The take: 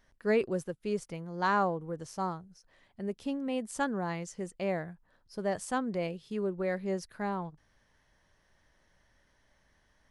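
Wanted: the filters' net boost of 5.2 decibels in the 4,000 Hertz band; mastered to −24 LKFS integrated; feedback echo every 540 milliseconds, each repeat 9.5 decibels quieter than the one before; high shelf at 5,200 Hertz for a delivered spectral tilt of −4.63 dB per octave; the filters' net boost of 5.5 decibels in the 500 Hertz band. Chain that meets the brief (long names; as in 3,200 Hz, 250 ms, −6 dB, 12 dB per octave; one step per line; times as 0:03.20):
parametric band 500 Hz +6.5 dB
parametric band 4,000 Hz +5.5 dB
high-shelf EQ 5,200 Hz +3 dB
repeating echo 540 ms, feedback 33%, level −9.5 dB
level +6 dB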